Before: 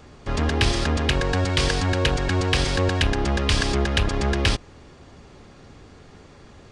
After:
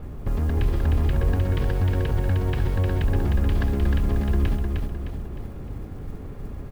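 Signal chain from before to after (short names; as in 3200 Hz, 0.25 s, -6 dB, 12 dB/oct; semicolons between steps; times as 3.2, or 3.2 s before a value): LPF 3300 Hz 12 dB/oct; tilt -3.5 dB/oct; limiter -17.5 dBFS, peak gain reduction 19.5 dB; modulation noise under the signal 33 dB; on a send: feedback echo 0.307 s, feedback 45%, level -4 dB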